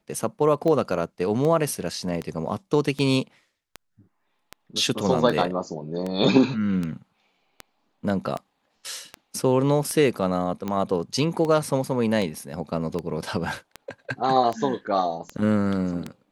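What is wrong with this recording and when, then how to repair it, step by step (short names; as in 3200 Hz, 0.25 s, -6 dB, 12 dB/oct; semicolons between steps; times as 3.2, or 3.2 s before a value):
tick 78 rpm -16 dBFS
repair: de-click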